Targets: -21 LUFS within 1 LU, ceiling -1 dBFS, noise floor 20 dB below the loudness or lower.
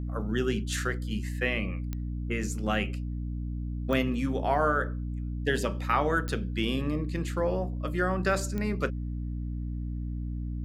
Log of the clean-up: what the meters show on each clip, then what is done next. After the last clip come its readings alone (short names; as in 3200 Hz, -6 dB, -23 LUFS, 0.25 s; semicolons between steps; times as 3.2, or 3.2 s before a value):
clicks 4; hum 60 Hz; harmonics up to 300 Hz; hum level -31 dBFS; loudness -30.5 LUFS; peak -12.0 dBFS; loudness target -21.0 LUFS
-> de-click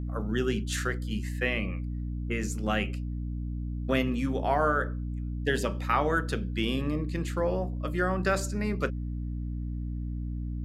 clicks 0; hum 60 Hz; harmonics up to 300 Hz; hum level -31 dBFS
-> de-hum 60 Hz, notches 5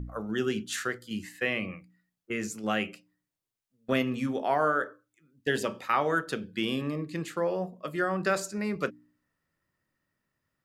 hum none; loudness -30.5 LUFS; peak -12.5 dBFS; loudness target -21.0 LUFS
-> gain +9.5 dB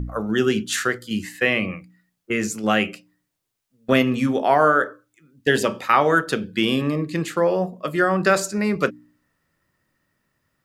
loudness -21.0 LUFS; peak -3.0 dBFS; noise floor -77 dBFS